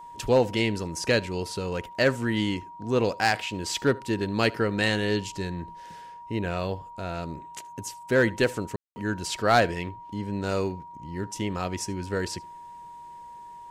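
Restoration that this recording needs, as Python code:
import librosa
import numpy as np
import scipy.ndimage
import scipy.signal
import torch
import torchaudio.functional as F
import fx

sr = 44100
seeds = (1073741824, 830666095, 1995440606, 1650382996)

y = fx.fix_declip(x, sr, threshold_db=-12.0)
y = fx.notch(y, sr, hz=950.0, q=30.0)
y = fx.fix_ambience(y, sr, seeds[0], print_start_s=13.15, print_end_s=13.65, start_s=8.76, end_s=8.96)
y = fx.fix_echo_inverse(y, sr, delay_ms=75, level_db=-24.0)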